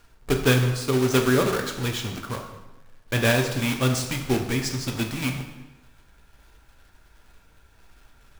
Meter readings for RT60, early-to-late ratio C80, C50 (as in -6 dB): 1.1 s, 8.5 dB, 7.0 dB